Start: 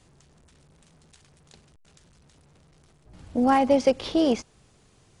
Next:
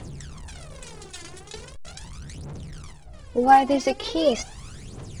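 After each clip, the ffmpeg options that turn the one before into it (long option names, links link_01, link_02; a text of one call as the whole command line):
ffmpeg -i in.wav -af "aphaser=in_gain=1:out_gain=1:delay=3:decay=0.73:speed=0.4:type=triangular,areverse,acompressor=mode=upward:threshold=-26dB:ratio=2.5,areverse" out.wav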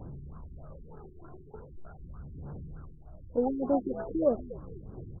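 ffmpeg -i in.wav -filter_complex "[0:a]asplit=6[link_01][link_02][link_03][link_04][link_05][link_06];[link_02]adelay=237,afreqshift=-72,volume=-17dB[link_07];[link_03]adelay=474,afreqshift=-144,volume=-21.7dB[link_08];[link_04]adelay=711,afreqshift=-216,volume=-26.5dB[link_09];[link_05]adelay=948,afreqshift=-288,volume=-31.2dB[link_10];[link_06]adelay=1185,afreqshift=-360,volume=-35.9dB[link_11];[link_01][link_07][link_08][link_09][link_10][link_11]amix=inputs=6:normalize=0,afftfilt=real='re*lt(b*sr/1024,390*pow(1700/390,0.5+0.5*sin(2*PI*3.3*pts/sr)))':imag='im*lt(b*sr/1024,390*pow(1700/390,0.5+0.5*sin(2*PI*3.3*pts/sr)))':win_size=1024:overlap=0.75,volume=-5dB" out.wav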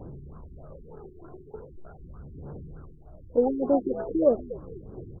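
ffmpeg -i in.wav -af "equalizer=frequency=430:width=1.1:gain=7" out.wav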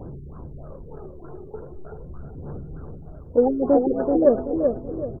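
ffmpeg -i in.wav -filter_complex "[0:a]acontrast=21,asplit=2[link_01][link_02];[link_02]adelay=381,lowpass=frequency=1300:poles=1,volume=-4.5dB,asplit=2[link_03][link_04];[link_04]adelay=381,lowpass=frequency=1300:poles=1,volume=0.37,asplit=2[link_05][link_06];[link_06]adelay=381,lowpass=frequency=1300:poles=1,volume=0.37,asplit=2[link_07][link_08];[link_08]adelay=381,lowpass=frequency=1300:poles=1,volume=0.37,asplit=2[link_09][link_10];[link_10]adelay=381,lowpass=frequency=1300:poles=1,volume=0.37[link_11];[link_01][link_03][link_05][link_07][link_09][link_11]amix=inputs=6:normalize=0" out.wav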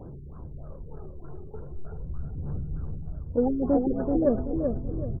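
ffmpeg -i in.wav -af "asubboost=boost=4.5:cutoff=210,volume=-5.5dB" out.wav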